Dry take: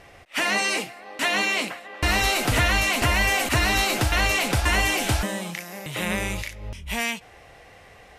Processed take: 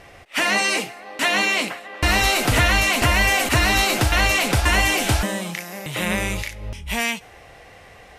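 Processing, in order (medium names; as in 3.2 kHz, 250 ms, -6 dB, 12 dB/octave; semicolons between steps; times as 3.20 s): de-hum 417.7 Hz, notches 38; trim +3.5 dB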